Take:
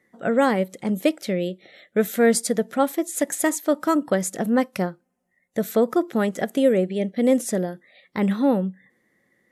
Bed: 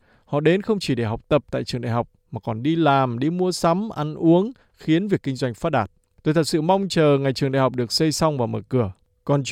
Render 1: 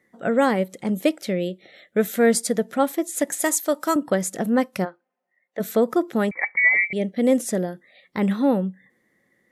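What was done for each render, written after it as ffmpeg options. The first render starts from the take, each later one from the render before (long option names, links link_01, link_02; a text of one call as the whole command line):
ffmpeg -i in.wav -filter_complex "[0:a]asettb=1/sr,asplit=3[link_01][link_02][link_03];[link_01]atrim=end=3.424[link_04];[link_02]atrim=start=3.42:end=3.96,asetpts=PTS-STARTPTS,afade=type=in:duration=0.004:curve=qsin,afade=type=out:start_time=0.536:duration=0.004:curve=qsin,bass=frequency=250:gain=-12,treble=frequency=4000:gain=7[link_05];[link_03]atrim=start=3.956[link_06];[link_04][link_05]acrossfade=duration=0.004:curve1=hsin:curve2=qsin[link_07];[link_07][link_06]acrossfade=duration=0.004:curve1=qsin:curve2=hsin,asplit=3[link_08][link_09][link_10];[link_08]afade=type=out:start_time=4.84:duration=0.02[link_11];[link_09]highpass=480,lowpass=2900,afade=type=in:start_time=4.84:duration=0.02,afade=type=out:start_time=5.59:duration=0.02[link_12];[link_10]afade=type=in:start_time=5.59:duration=0.02[link_13];[link_11][link_12][link_13]amix=inputs=3:normalize=0,asettb=1/sr,asplit=3[link_14][link_15][link_16];[link_14]atrim=end=6.314[link_17];[link_15]atrim=start=6.31:end=6.93,asetpts=PTS-STARTPTS,afade=type=in:duration=0.004:curve=qsin,afade=type=out:start_time=0.616:duration=0.004:curve=qsin,lowpass=frequency=2100:width_type=q:width=0.5098,lowpass=frequency=2100:width_type=q:width=0.6013,lowpass=frequency=2100:width_type=q:width=0.9,lowpass=frequency=2100:width_type=q:width=2.563,afreqshift=-2500[link_18];[link_16]atrim=start=6.926[link_19];[link_17][link_18]acrossfade=duration=0.004:curve1=hsin:curve2=qsin[link_20];[link_20][link_19]acrossfade=duration=0.004:curve1=qsin:curve2=hsin" out.wav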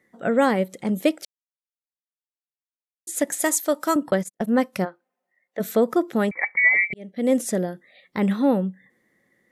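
ffmpeg -i in.wav -filter_complex "[0:a]asettb=1/sr,asplit=3[link_01][link_02][link_03];[link_01]atrim=end=4.114[link_04];[link_02]atrim=start=4.11:end=4.56,asetpts=PTS-STARTPTS,afade=type=in:duration=0.004:curve=qsin,afade=type=out:start_time=0.446:duration=0.004:curve=qsin,agate=range=-54dB:threshold=-26dB:ratio=16:release=100:detection=peak[link_05];[link_03]atrim=start=4.556[link_06];[link_04][link_05]acrossfade=duration=0.004:curve1=hsin:curve2=qsin[link_07];[link_07][link_06]acrossfade=duration=0.004:curve1=qsin:curve2=hsin,asplit=4[link_08][link_09][link_10][link_11];[link_08]atrim=end=1.25,asetpts=PTS-STARTPTS,afade=type=out:start_time=1.246:duration=0.004:curve=hsin[link_12];[link_09]atrim=start=1.25:end=3.07,asetpts=PTS-STARTPTS,volume=0[link_13];[link_10]atrim=start=3.07:end=6.94,asetpts=PTS-STARTPTS,afade=type=in:duration=0.004:curve=hsin,afade=type=out:start_time=3.866:duration=0.004:curve=hsin[link_14];[link_11]atrim=start=6.94,asetpts=PTS-STARTPTS,afade=type=in:duration=0.44[link_15];[link_12][link_13][link_14][link_15]concat=n=4:v=0:a=1" out.wav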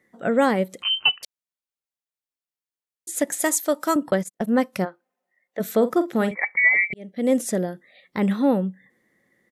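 ffmpeg -i in.wav -filter_complex "[0:a]asettb=1/sr,asplit=3[link_01][link_02][link_03];[link_01]atrim=end=0.824[link_04];[link_02]atrim=start=0.82:end=1.23,asetpts=PTS-STARTPTS,afade=type=in:duration=0.004:curve=qsin,afade=type=out:start_time=0.406:duration=0.004:curve=qsin,lowpass=frequency=2800:width_type=q:width=0.5098,lowpass=frequency=2800:width_type=q:width=0.6013,lowpass=frequency=2800:width_type=q:width=0.9,lowpass=frequency=2800:width_type=q:width=2.563,afreqshift=-3300[link_05];[link_03]atrim=start=1.226[link_06];[link_04][link_05]acrossfade=duration=0.004:curve1=hsin:curve2=qsin[link_07];[link_07][link_06]acrossfade=duration=0.004:curve1=qsin:curve2=hsin,asplit=3[link_08][link_09][link_10];[link_08]afade=type=out:start_time=5.79:duration=0.02[link_11];[link_09]asplit=2[link_12][link_13];[link_13]adelay=46,volume=-12dB[link_14];[link_12][link_14]amix=inputs=2:normalize=0,afade=type=in:start_time=5.79:duration=0.02,afade=type=out:start_time=6.34:duration=0.02[link_15];[link_10]afade=type=in:start_time=6.34:duration=0.02[link_16];[link_11][link_15][link_16]amix=inputs=3:normalize=0" out.wav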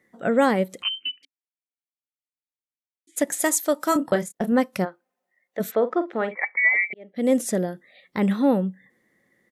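ffmpeg -i in.wav -filter_complex "[0:a]asplit=3[link_01][link_02][link_03];[link_01]afade=type=out:start_time=0.88:duration=0.02[link_04];[link_02]asplit=3[link_05][link_06][link_07];[link_05]bandpass=frequency=270:width_type=q:width=8,volume=0dB[link_08];[link_06]bandpass=frequency=2290:width_type=q:width=8,volume=-6dB[link_09];[link_07]bandpass=frequency=3010:width_type=q:width=8,volume=-9dB[link_10];[link_08][link_09][link_10]amix=inputs=3:normalize=0,afade=type=in:start_time=0.88:duration=0.02,afade=type=out:start_time=3.16:duration=0.02[link_11];[link_03]afade=type=in:start_time=3.16:duration=0.02[link_12];[link_04][link_11][link_12]amix=inputs=3:normalize=0,asettb=1/sr,asplit=3[link_13][link_14][link_15];[link_13]atrim=end=3.894[link_16];[link_14]atrim=start=3.89:end=4.52,asetpts=PTS-STARTPTS,afade=type=in:duration=0.004:curve=qsin,afade=type=out:start_time=0.626:duration=0.004:curve=qsin,asplit=2[link_17][link_18];[link_18]adelay=29,volume=-8.5dB[link_19];[link_17][link_19]amix=inputs=2:normalize=0,atrim=end_sample=27783[link_20];[link_15]atrim=start=4.516[link_21];[link_16][link_20]acrossfade=duration=0.004:curve1=hsin:curve2=qsin[link_22];[link_22][link_21]acrossfade=duration=0.004:curve1=qsin:curve2=hsin,asplit=3[link_23][link_24][link_25];[link_23]afade=type=out:start_time=5.7:duration=0.02[link_26];[link_24]highpass=370,lowpass=2400,afade=type=in:start_time=5.7:duration=0.02,afade=type=out:start_time=7.14:duration=0.02[link_27];[link_25]afade=type=in:start_time=7.14:duration=0.02[link_28];[link_26][link_27][link_28]amix=inputs=3:normalize=0" out.wav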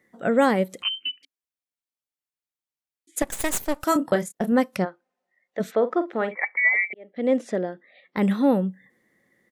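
ffmpeg -i in.wav -filter_complex "[0:a]asettb=1/sr,asplit=3[link_01][link_02][link_03];[link_01]atrim=end=3.224[link_04];[link_02]atrim=start=3.22:end=3.84,asetpts=PTS-STARTPTS,afade=type=in:duration=0.004:curve=qsin,afade=type=out:start_time=0.616:duration=0.004:curve=qsin,aeval=exprs='max(val(0),0)':channel_layout=same[link_05];[link_03]atrim=start=3.836[link_06];[link_04][link_05]acrossfade=duration=0.004:curve1=hsin:curve2=qsin[link_07];[link_07][link_06]acrossfade=duration=0.004:curve1=qsin:curve2=hsin,asettb=1/sr,asplit=3[link_08][link_09][link_10];[link_08]atrim=end=4.764[link_11];[link_09]atrim=start=4.76:end=5.87,asetpts=PTS-STARTPTS,afade=type=in:duration=0.004:curve=qsin,afade=type=out:start_time=1.106:duration=0.004:curve=qsin,lowpass=6200[link_12];[link_10]atrim=start=5.866[link_13];[link_11][link_12]acrossfade=duration=0.004:curve1=hsin:curve2=qsin[link_14];[link_14][link_13]acrossfade=duration=0.004:curve1=qsin:curve2=hsin,asettb=1/sr,asplit=3[link_15][link_16][link_17];[link_15]atrim=end=6.474[link_18];[link_16]atrim=start=6.47:end=8.17,asetpts=PTS-STARTPTS,afade=type=in:duration=0.004:curve=qsin,afade=type=out:start_time=1.696:duration=0.004:curve=qsin,highpass=250,lowpass=3100[link_19];[link_17]atrim=start=8.166[link_20];[link_18][link_19]acrossfade=duration=0.004:curve1=hsin:curve2=qsin[link_21];[link_21][link_20]acrossfade=duration=0.004:curve1=qsin:curve2=hsin" out.wav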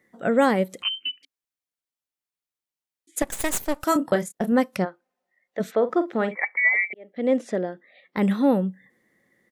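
ffmpeg -i in.wav -filter_complex "[0:a]asettb=1/sr,asplit=3[link_01][link_02][link_03];[link_01]atrim=end=5.894[link_04];[link_02]atrim=start=5.89:end=6.47,asetpts=PTS-STARTPTS,afade=type=in:duration=0.004:curve=qsin,afade=type=out:start_time=0.576:duration=0.004:curve=qsin,bass=frequency=250:gain=8,treble=frequency=4000:gain=7[link_05];[link_03]atrim=start=6.466[link_06];[link_04][link_05]acrossfade=duration=0.004:curve1=hsin:curve2=qsin[link_07];[link_07][link_06]acrossfade=duration=0.004:curve1=qsin:curve2=hsin" out.wav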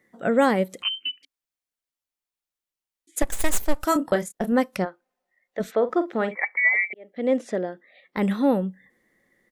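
ffmpeg -i in.wav -af "asubboost=boost=4.5:cutoff=52" out.wav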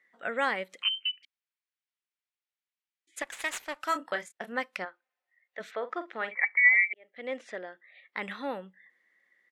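ffmpeg -i in.wav -af "bandpass=frequency=2200:width_type=q:width=1.1:csg=0" out.wav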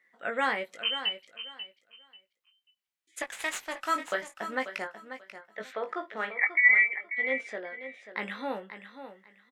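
ffmpeg -i in.wav -filter_complex "[0:a]asplit=2[link_01][link_02];[link_02]adelay=19,volume=-6.5dB[link_03];[link_01][link_03]amix=inputs=2:normalize=0,aecho=1:1:539|1078|1617:0.282|0.0592|0.0124" out.wav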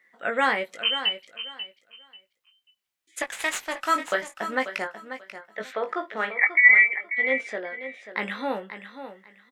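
ffmpeg -i in.wav -af "volume=5.5dB" out.wav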